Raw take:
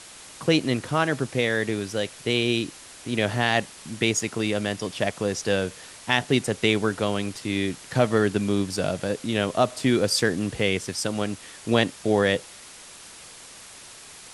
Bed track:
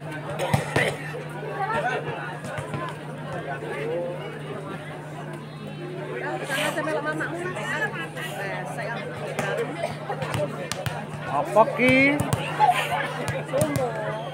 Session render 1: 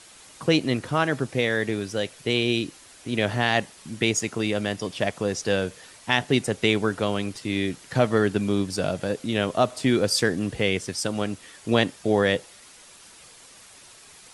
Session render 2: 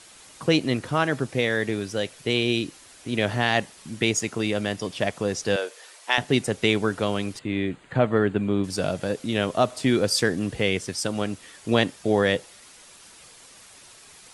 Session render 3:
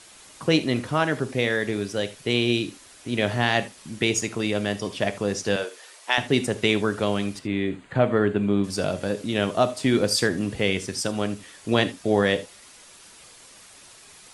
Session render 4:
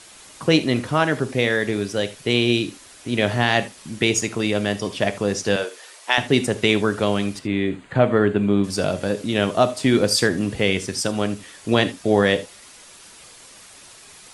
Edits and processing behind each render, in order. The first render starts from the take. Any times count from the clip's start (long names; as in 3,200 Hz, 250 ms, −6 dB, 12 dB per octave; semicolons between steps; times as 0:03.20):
broadband denoise 6 dB, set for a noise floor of −45 dBFS
0:05.56–0:06.18: high-pass filter 400 Hz 24 dB per octave; 0:07.39–0:08.64: moving average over 8 samples
reverb whose tail is shaped and stops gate 100 ms flat, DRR 11 dB
level +3.5 dB; brickwall limiter −3 dBFS, peak gain reduction 1 dB